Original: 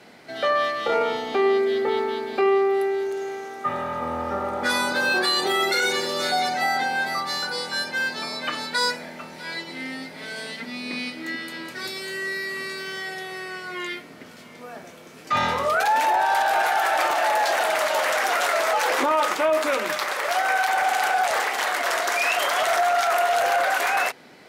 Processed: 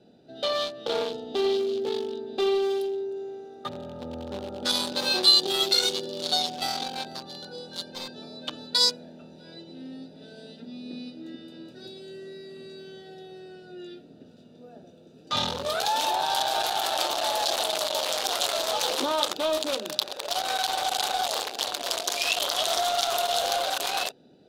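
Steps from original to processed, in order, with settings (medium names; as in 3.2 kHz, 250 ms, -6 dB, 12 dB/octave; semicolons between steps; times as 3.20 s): local Wiener filter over 41 samples; resonant high shelf 2.7 kHz +9.5 dB, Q 3; trim -3 dB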